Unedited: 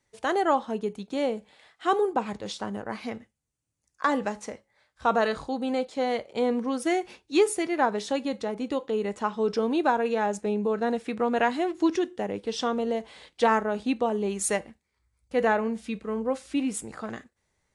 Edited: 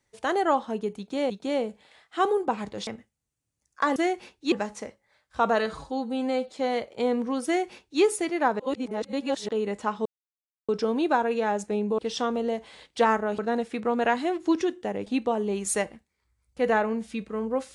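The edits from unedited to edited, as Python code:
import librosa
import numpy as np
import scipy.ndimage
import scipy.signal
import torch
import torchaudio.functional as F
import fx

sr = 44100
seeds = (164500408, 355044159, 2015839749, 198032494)

y = fx.edit(x, sr, fx.repeat(start_s=0.98, length_s=0.32, count=2),
    fx.cut(start_s=2.55, length_s=0.54),
    fx.stretch_span(start_s=5.32, length_s=0.57, factor=1.5),
    fx.duplicate(start_s=6.83, length_s=0.56, to_s=4.18),
    fx.reverse_span(start_s=7.97, length_s=0.89),
    fx.insert_silence(at_s=9.43, length_s=0.63),
    fx.move(start_s=12.41, length_s=1.4, to_s=10.73), tone=tone)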